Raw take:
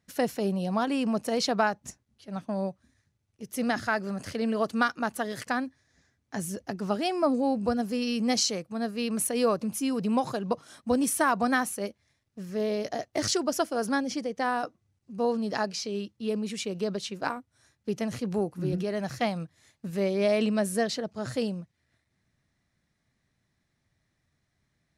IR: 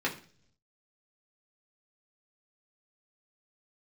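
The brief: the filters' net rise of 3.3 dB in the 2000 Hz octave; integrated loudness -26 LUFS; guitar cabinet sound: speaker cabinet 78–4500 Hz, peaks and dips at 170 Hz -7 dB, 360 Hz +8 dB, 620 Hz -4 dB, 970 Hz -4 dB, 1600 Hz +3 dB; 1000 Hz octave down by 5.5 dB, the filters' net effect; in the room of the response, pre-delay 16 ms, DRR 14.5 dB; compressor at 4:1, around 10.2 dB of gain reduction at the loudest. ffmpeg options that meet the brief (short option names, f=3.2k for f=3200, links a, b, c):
-filter_complex "[0:a]equalizer=f=1k:t=o:g=-7,equalizer=f=2k:t=o:g=5,acompressor=threshold=-34dB:ratio=4,asplit=2[a][b];[1:a]atrim=start_sample=2205,adelay=16[c];[b][c]afir=irnorm=-1:irlink=0,volume=-23dB[d];[a][d]amix=inputs=2:normalize=0,highpass=78,equalizer=f=170:t=q:w=4:g=-7,equalizer=f=360:t=q:w=4:g=8,equalizer=f=620:t=q:w=4:g=-4,equalizer=f=970:t=q:w=4:g=-4,equalizer=f=1.6k:t=q:w=4:g=3,lowpass=f=4.5k:w=0.5412,lowpass=f=4.5k:w=1.3066,volume=11dB"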